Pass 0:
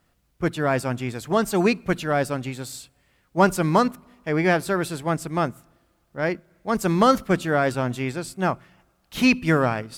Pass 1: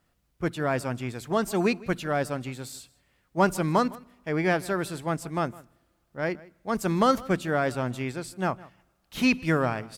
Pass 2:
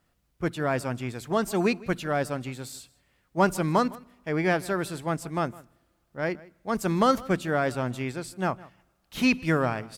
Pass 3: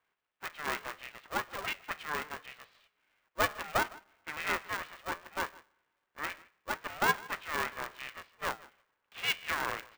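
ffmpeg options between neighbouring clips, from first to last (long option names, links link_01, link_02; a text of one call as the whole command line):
ffmpeg -i in.wav -filter_complex "[0:a]asplit=2[link_01][link_02];[link_02]adelay=157.4,volume=-21dB,highshelf=frequency=4000:gain=-3.54[link_03];[link_01][link_03]amix=inputs=2:normalize=0,volume=-4.5dB" out.wav
ffmpeg -i in.wav -af anull out.wav
ffmpeg -i in.wav -af "flanger=delay=7.8:depth=6.1:regen=-79:speed=0.71:shape=triangular,asuperpass=centerf=1500:order=8:qfactor=0.73,aeval=exprs='val(0)*sgn(sin(2*PI*300*n/s))':channel_layout=same,volume=1.5dB" out.wav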